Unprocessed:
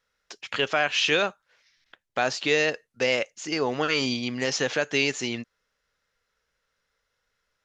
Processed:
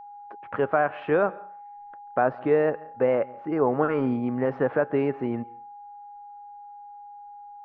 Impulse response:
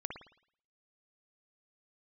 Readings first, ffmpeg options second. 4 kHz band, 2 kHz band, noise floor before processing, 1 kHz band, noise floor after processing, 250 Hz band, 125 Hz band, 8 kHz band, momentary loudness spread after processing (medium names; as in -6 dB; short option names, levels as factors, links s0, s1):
under -25 dB, -8.0 dB, -78 dBFS, +4.0 dB, -44 dBFS, +4.0 dB, +4.0 dB, under -40 dB, 21 LU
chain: -filter_complex "[0:a]lowpass=f=1300:w=0.5412,lowpass=f=1300:w=1.3066,aeval=exprs='val(0)+0.00562*sin(2*PI*820*n/s)':c=same,asplit=2[s0][s1];[1:a]atrim=start_sample=2205,asetrate=74970,aresample=44100,adelay=138[s2];[s1][s2]afir=irnorm=-1:irlink=0,volume=0.15[s3];[s0][s3]amix=inputs=2:normalize=0,volume=1.58"